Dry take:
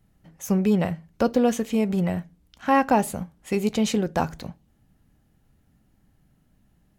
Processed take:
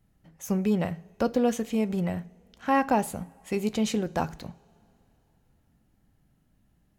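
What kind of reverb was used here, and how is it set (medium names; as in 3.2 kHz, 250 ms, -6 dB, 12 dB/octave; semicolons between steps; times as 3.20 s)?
two-slope reverb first 0.53 s, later 3.3 s, from -16 dB, DRR 18.5 dB; trim -4 dB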